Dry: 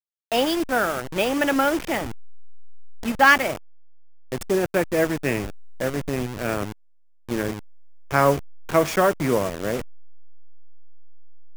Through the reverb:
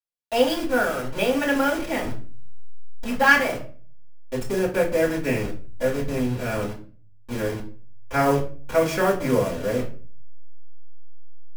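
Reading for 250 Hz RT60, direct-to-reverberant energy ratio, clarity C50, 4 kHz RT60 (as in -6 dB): 0.60 s, -10.0 dB, 10.0 dB, 0.30 s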